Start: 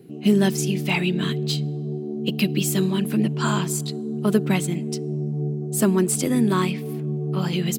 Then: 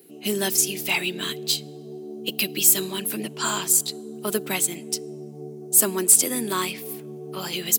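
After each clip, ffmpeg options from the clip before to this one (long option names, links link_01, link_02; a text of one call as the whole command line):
ffmpeg -i in.wav -af "highpass=350,aemphasis=mode=production:type=75kf,volume=-2.5dB" out.wav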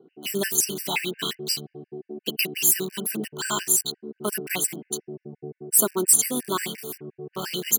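ffmpeg -i in.wav -filter_complex "[0:a]acrossover=split=2200[link_01][link_02];[link_02]acrusher=bits=5:mix=0:aa=0.000001[link_03];[link_01][link_03]amix=inputs=2:normalize=0,afftfilt=real='re*gt(sin(2*PI*5.7*pts/sr)*(1-2*mod(floor(b*sr/1024/1500),2)),0)':imag='im*gt(sin(2*PI*5.7*pts/sr)*(1-2*mod(floor(b*sr/1024/1500),2)),0)':win_size=1024:overlap=0.75,volume=1.5dB" out.wav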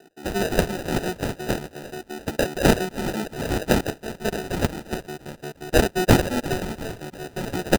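ffmpeg -i in.wav -filter_complex "[0:a]asplit=6[link_01][link_02][link_03][link_04][link_05][link_06];[link_02]adelay=347,afreqshift=140,volume=-15.5dB[link_07];[link_03]adelay=694,afreqshift=280,volume=-21.2dB[link_08];[link_04]adelay=1041,afreqshift=420,volume=-26.9dB[link_09];[link_05]adelay=1388,afreqshift=560,volume=-32.5dB[link_10];[link_06]adelay=1735,afreqshift=700,volume=-38.2dB[link_11];[link_01][link_07][link_08][link_09][link_10][link_11]amix=inputs=6:normalize=0,acrusher=samples=40:mix=1:aa=0.000001,volume=2dB" out.wav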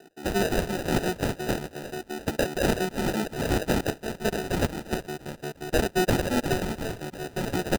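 ffmpeg -i in.wav -af "alimiter=limit=-14.5dB:level=0:latency=1:release=142" out.wav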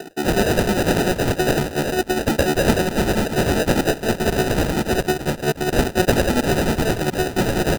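ffmpeg -i in.wav -filter_complex "[0:a]asplit=2[link_01][link_02];[link_02]aeval=exprs='0.2*sin(PI/2*6.31*val(0)/0.2)':channel_layout=same,volume=-7dB[link_03];[link_01][link_03]amix=inputs=2:normalize=0,tremolo=f=10:d=0.58,volume=5.5dB" out.wav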